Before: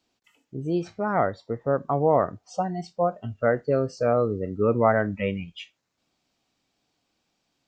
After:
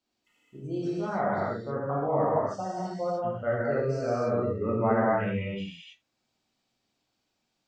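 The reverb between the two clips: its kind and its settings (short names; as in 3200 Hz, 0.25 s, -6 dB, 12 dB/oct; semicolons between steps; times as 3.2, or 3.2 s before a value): non-linear reverb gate 0.33 s flat, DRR -7.5 dB; gain -11.5 dB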